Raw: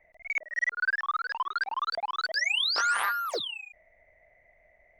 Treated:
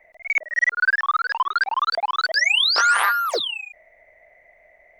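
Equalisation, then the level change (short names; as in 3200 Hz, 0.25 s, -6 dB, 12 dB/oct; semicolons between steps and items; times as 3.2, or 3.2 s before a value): tone controls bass -10 dB, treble -1 dB; +9.0 dB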